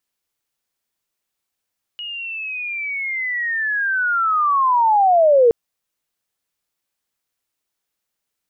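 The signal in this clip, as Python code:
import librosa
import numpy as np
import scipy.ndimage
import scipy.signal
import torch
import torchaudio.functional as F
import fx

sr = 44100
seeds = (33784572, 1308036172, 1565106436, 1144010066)

y = fx.chirp(sr, length_s=3.52, from_hz=2900.0, to_hz=450.0, law='linear', from_db=-27.0, to_db=-8.5)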